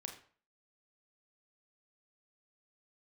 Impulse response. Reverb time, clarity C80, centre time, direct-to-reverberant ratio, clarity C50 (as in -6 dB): 0.45 s, 12.5 dB, 18 ms, 3.0 dB, 8.5 dB